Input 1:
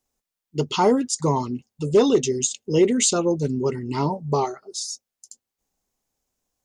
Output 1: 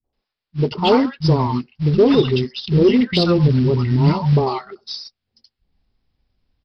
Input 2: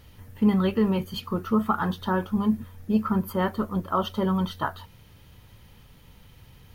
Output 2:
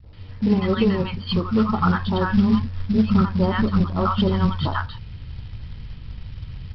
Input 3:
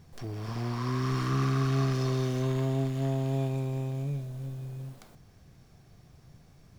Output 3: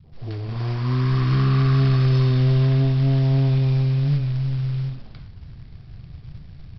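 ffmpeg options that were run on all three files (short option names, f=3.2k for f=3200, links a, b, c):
-filter_complex "[0:a]acrossover=split=200|900[a][b][c];[b]adelay=40[d];[c]adelay=130[e];[a][d][e]amix=inputs=3:normalize=0,asubboost=boost=4.5:cutoff=210,aresample=11025,acrusher=bits=6:mode=log:mix=0:aa=0.000001,aresample=44100,acontrast=59"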